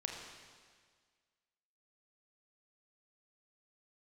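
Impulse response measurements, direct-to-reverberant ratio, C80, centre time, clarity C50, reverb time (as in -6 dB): 0.5 dB, 4.0 dB, 66 ms, 2.5 dB, 1.7 s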